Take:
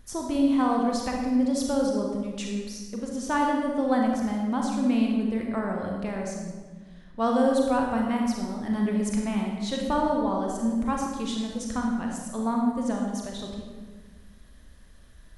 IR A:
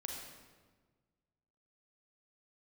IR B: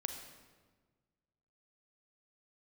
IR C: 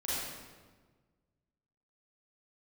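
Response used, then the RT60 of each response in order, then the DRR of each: A; 1.4, 1.4, 1.4 seconds; 0.0, 5.0, −10.0 decibels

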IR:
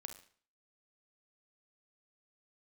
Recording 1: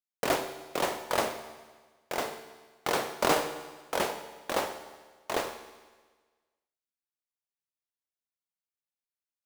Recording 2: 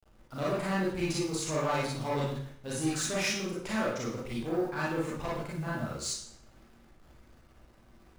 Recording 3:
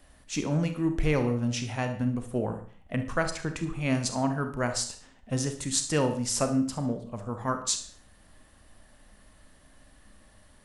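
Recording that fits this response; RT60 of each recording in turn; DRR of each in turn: 3; 1.4, 0.60, 0.45 seconds; 9.0, −7.0, 7.0 decibels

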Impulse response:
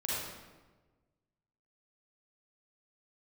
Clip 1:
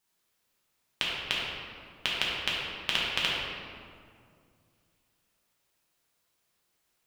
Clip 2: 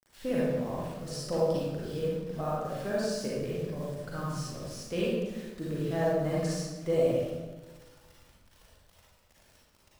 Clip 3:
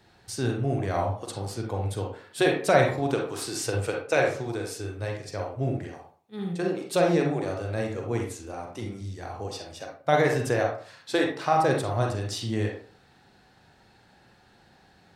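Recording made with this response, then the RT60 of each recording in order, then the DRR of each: 2; 2.3, 1.3, 0.45 seconds; −6.0, −7.0, 0.0 decibels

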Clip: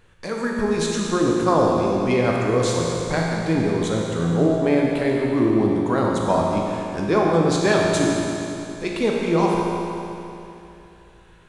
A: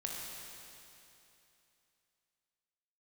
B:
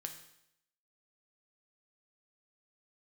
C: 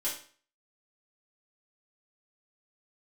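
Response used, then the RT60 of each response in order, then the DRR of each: A; 2.9, 0.75, 0.45 seconds; −2.5, 4.5, −8.5 decibels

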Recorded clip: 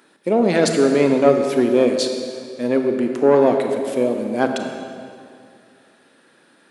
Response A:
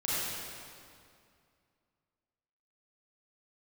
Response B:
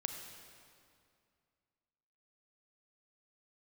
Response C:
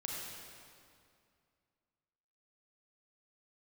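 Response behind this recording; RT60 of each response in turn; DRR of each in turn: B; 2.3, 2.3, 2.3 seconds; −10.0, 4.5, −3.0 decibels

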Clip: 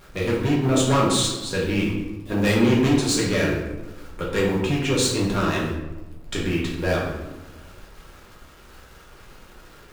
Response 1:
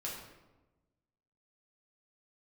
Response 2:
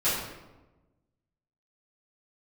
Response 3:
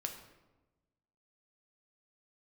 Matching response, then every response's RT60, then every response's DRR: 1; 1.1, 1.1, 1.1 seconds; −5.0, −14.0, 3.5 decibels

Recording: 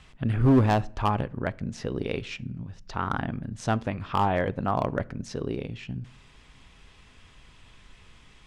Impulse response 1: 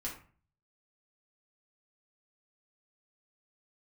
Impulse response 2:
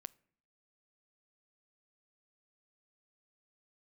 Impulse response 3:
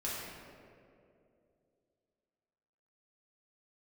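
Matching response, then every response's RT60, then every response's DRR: 2; 0.40, 0.55, 2.6 seconds; −4.5, 19.0, −8.0 decibels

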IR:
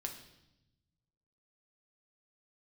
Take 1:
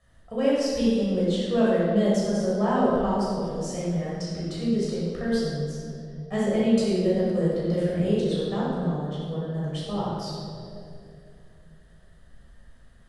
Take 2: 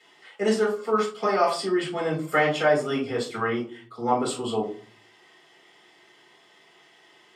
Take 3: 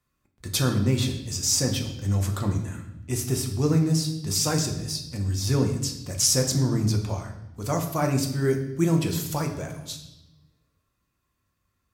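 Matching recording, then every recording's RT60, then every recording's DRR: 3; 2.7, 0.45, 0.90 seconds; −8.0, −5.0, 2.5 decibels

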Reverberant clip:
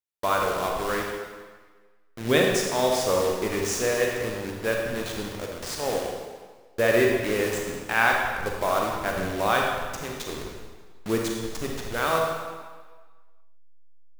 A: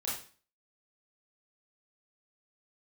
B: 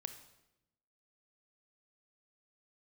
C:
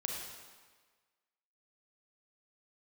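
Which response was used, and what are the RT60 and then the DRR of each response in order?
C; 0.40, 0.90, 1.5 seconds; −7.0, 8.5, −0.5 decibels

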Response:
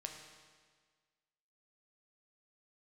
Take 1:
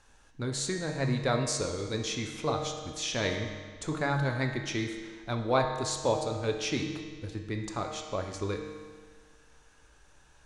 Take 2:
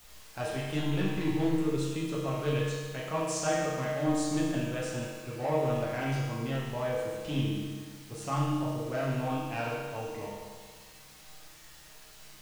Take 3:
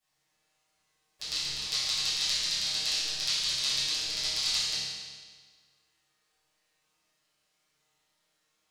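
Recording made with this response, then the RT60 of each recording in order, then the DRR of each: 1; 1.6, 1.6, 1.6 seconds; 2.0, −7.0, −16.5 decibels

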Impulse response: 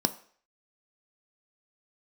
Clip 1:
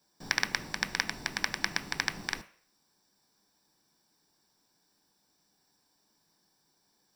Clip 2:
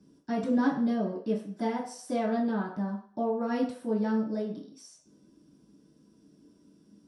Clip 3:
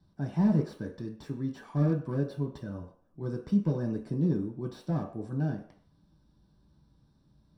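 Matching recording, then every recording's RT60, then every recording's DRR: 1; 0.50, 0.50, 0.50 seconds; 9.0, −8.0, −0.5 decibels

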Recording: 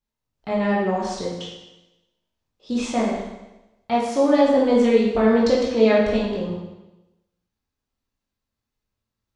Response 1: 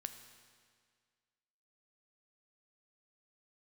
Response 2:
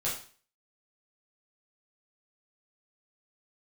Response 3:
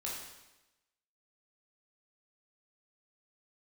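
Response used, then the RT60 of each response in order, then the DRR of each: 3; 1.9, 0.40, 1.0 seconds; 8.0, −9.0, −5.0 decibels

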